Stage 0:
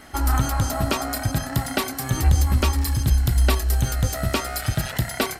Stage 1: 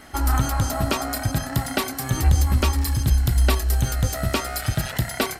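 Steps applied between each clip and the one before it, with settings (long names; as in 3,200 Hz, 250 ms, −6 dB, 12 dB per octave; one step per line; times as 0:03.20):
no processing that can be heard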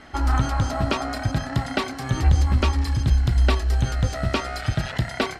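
low-pass filter 4,600 Hz 12 dB per octave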